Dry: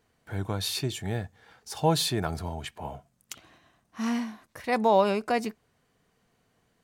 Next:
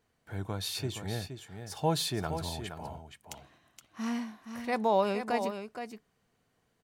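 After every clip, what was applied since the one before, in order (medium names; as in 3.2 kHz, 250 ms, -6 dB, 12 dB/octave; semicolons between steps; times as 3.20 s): delay 470 ms -8.5 dB; trim -5 dB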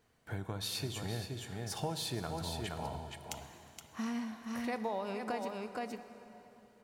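compression 6:1, threshold -38 dBFS, peak gain reduction 16 dB; plate-style reverb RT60 3.4 s, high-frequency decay 0.8×, DRR 9.5 dB; trim +3 dB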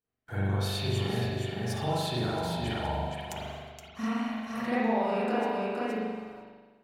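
coarse spectral quantiser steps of 15 dB; gate -55 dBFS, range -24 dB; spring tank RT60 1.4 s, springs 41 ms, chirp 50 ms, DRR -9 dB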